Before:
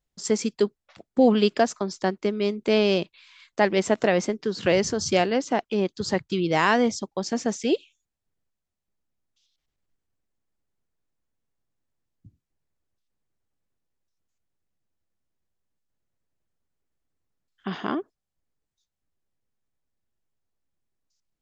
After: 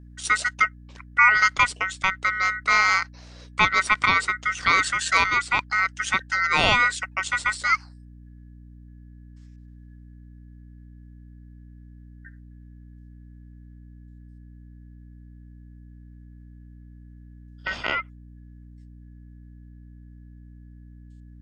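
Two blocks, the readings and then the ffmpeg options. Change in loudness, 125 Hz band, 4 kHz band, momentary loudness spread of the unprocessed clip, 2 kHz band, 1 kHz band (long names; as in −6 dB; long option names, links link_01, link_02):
+3.0 dB, −2.5 dB, +3.5 dB, 10 LU, +12.0 dB, +6.0 dB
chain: -af "aeval=exprs='val(0)*sin(2*PI*1700*n/s)':channel_layout=same,aeval=exprs='val(0)+0.00398*(sin(2*PI*60*n/s)+sin(2*PI*2*60*n/s)/2+sin(2*PI*3*60*n/s)/3+sin(2*PI*4*60*n/s)/4+sin(2*PI*5*60*n/s)/5)':channel_layout=same,volume=4dB"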